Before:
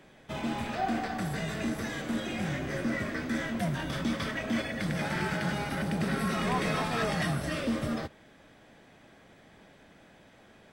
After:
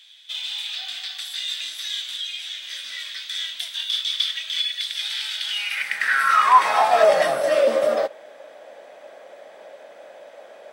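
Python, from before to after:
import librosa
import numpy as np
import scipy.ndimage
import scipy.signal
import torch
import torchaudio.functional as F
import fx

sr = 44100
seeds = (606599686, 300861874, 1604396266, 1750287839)

y = fx.filter_sweep_highpass(x, sr, from_hz=3500.0, to_hz=570.0, start_s=5.41, end_s=7.11, q=6.2)
y = fx.ensemble(y, sr, at=(2.16, 2.61), fade=0.02)
y = y * librosa.db_to_amplitude(7.0)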